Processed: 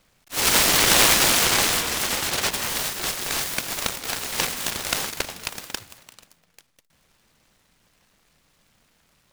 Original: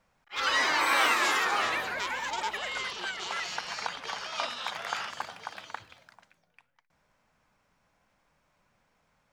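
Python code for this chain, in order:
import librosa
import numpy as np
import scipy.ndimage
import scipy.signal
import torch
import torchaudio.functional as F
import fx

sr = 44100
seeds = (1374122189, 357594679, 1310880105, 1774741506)

y = fx.noise_mod_delay(x, sr, seeds[0], noise_hz=1500.0, depth_ms=0.39)
y = F.gain(torch.from_numpy(y), 8.0).numpy()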